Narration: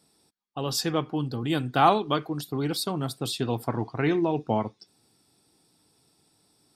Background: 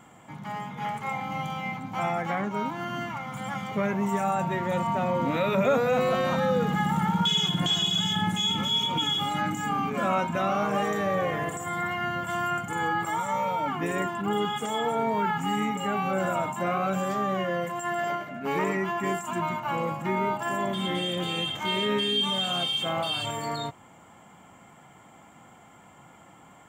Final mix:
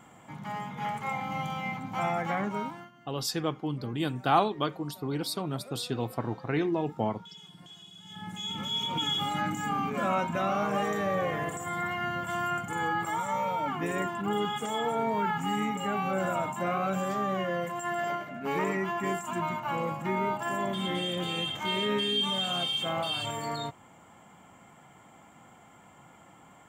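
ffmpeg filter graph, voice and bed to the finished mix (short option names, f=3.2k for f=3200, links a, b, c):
-filter_complex "[0:a]adelay=2500,volume=-4dB[a];[1:a]volume=21dB,afade=t=out:st=2.5:d=0.41:silence=0.0668344,afade=t=in:st=8.03:d=1.11:silence=0.0749894[b];[a][b]amix=inputs=2:normalize=0"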